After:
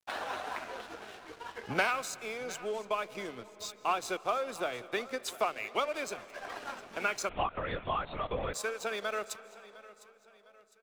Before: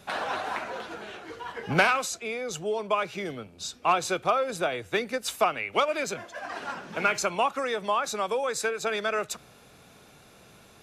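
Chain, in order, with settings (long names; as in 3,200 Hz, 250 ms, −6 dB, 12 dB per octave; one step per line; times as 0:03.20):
parametric band 160 Hz −10 dB 0.38 octaves
in parallel at −2 dB: downward compressor, threshold −33 dBFS, peak gain reduction 15 dB
on the sum: tape wow and flutter 26 cents
dead-zone distortion −40 dBFS
on a send: repeating echo 706 ms, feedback 40%, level −18.5 dB
on the sum: comb and all-pass reverb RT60 3.9 s, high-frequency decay 0.55×, pre-delay 110 ms, DRR 17.5 dB
0:07.29–0:08.54: linear-prediction vocoder at 8 kHz whisper
level −8 dB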